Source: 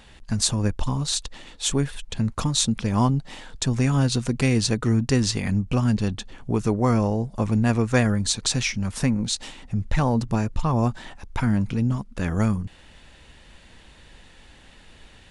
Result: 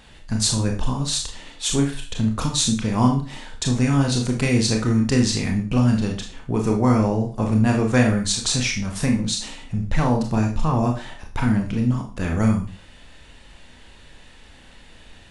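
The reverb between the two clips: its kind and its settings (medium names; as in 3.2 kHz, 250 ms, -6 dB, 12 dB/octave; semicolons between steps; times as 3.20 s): Schroeder reverb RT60 0.37 s, combs from 25 ms, DRR 1.5 dB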